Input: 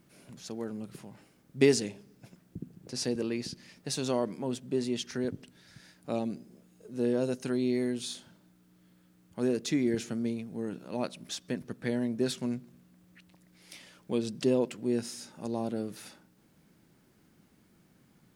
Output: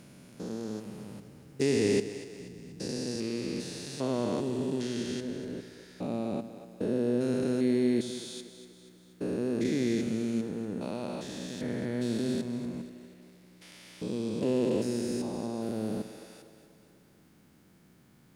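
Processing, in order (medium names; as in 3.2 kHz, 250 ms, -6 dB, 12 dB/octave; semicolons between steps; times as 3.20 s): spectrogram pixelated in time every 400 ms; two-band feedback delay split 310 Hz, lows 98 ms, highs 241 ms, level -12 dB; trim +4 dB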